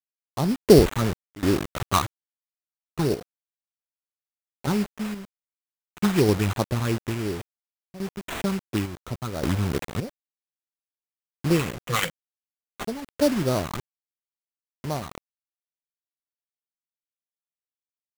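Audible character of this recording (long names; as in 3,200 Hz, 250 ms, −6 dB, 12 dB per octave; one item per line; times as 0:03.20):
phaser sweep stages 12, 2.9 Hz, lowest notch 500–2,900 Hz
a quantiser's noise floor 6 bits, dither none
sample-and-hold tremolo, depth 90%
aliases and images of a low sample rate 5,100 Hz, jitter 20%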